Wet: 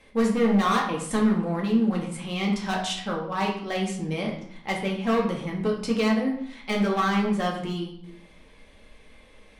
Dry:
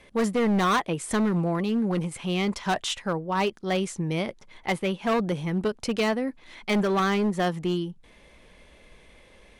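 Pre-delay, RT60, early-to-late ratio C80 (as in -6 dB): 4 ms, 0.65 s, 9.5 dB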